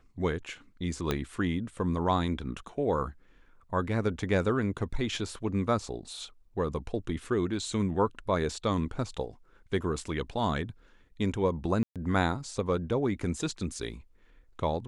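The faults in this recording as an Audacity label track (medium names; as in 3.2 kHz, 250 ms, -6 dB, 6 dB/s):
1.110000	1.110000	pop -13 dBFS
11.830000	11.960000	dropout 127 ms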